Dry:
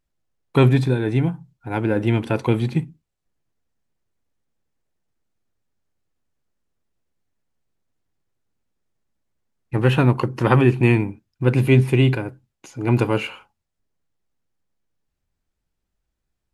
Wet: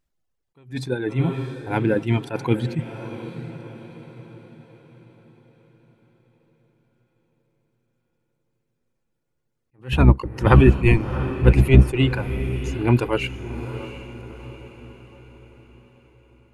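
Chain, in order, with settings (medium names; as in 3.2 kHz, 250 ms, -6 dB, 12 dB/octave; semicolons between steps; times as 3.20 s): 9.92–11.95 s: octave divider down 1 oct, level +2 dB; reverb removal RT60 2 s; on a send: echo that smears into a reverb 697 ms, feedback 47%, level -12.5 dB; on the sum: attacks held to a fixed rise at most 230 dB/s; trim +1.5 dB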